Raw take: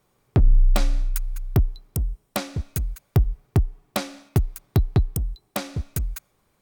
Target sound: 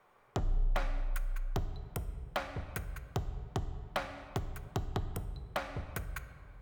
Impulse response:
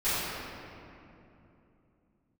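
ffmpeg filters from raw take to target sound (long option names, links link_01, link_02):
-filter_complex "[0:a]acrossover=split=550 2400:gain=0.158 1 0.112[link_01][link_02][link_03];[link_01][link_02][link_03]amix=inputs=3:normalize=0,acompressor=threshold=-47dB:ratio=2,aeval=exprs='0.0282*(abs(mod(val(0)/0.0282+3,4)-2)-1)':channel_layout=same,asplit=2[link_04][link_05];[1:a]atrim=start_sample=2205,asetrate=74970,aresample=44100,lowshelf=frequency=140:gain=7[link_06];[link_05][link_06]afir=irnorm=-1:irlink=0,volume=-18.5dB[link_07];[link_04][link_07]amix=inputs=2:normalize=0,volume=7.5dB"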